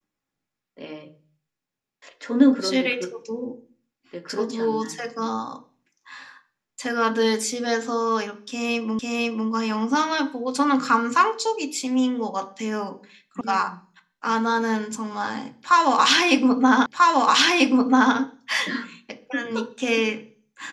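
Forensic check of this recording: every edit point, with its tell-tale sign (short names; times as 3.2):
8.99 repeat of the last 0.5 s
13.41 sound cut off
16.86 repeat of the last 1.29 s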